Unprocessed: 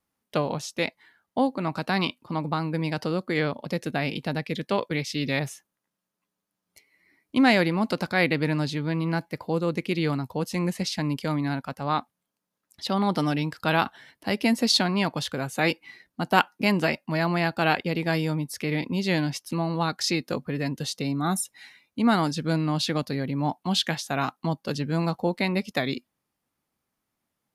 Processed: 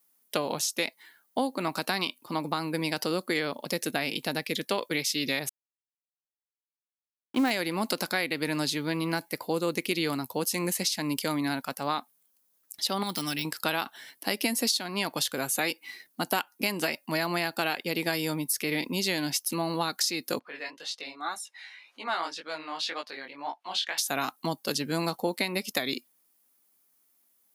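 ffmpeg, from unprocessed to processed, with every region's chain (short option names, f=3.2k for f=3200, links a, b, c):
-filter_complex "[0:a]asettb=1/sr,asplit=3[a][b][c];[a]atrim=end=5.494[d];[b]atrim=start=5.49:end=7.51,asetpts=PTS-STARTPTS,afade=t=in:d=0.004:c=qsin,afade=t=out:st=2.016:d=0.004:c=qsin,lowpass=f=1.4k:p=1,aeval=exprs='sgn(val(0))*max(abs(val(0))-0.00944,0)':c=same[e];[c]atrim=start=7.506[f];[d][e]acrossfade=d=0.004:c1=hsin:c2=qsin[g];[g][f]acrossfade=d=0.004:c1=qsin:c2=hsin,asettb=1/sr,asplit=3[h][i][j];[h]atrim=end=13.034[k];[i]atrim=start=13.03:end=13.45,asetpts=PTS-STARTPTS,afade=t=in:d=0.004:c=qsin,afade=t=out:st=0.416:d=0.004:c=qsin,deesser=0.8,equalizer=f=540:w=0.53:g=-12[l];[j]atrim=start=13.446[m];[k][l]acrossfade=d=0.004:c1=hsin:c2=qsin[n];[n][m]acrossfade=d=0.004:c1=qsin:c2=hsin,asettb=1/sr,asplit=3[o][p][q];[o]atrim=end=20.394[r];[p]atrim=start=20.39:end=23.98,asetpts=PTS-STARTPTS,afade=t=in:d=0.004:c=qsin,afade=t=out:st=3.586:d=0.004:c=qsin,acompressor=mode=upward:threshold=-38dB:ratio=2.5:attack=3.2:release=140:knee=2.83:detection=peak,flanger=delay=16.5:depth=7.4:speed=1.9,highpass=710,lowpass=3.1k[s];[q]atrim=start=23.976[t];[r][s]acrossfade=d=0.004:c1=hsin:c2=qsin[u];[u][t]acrossfade=d=0.004:c1=qsin:c2=hsin,aemphasis=mode=production:type=riaa,acompressor=threshold=-25dB:ratio=8,equalizer=f=300:w=0.96:g=5"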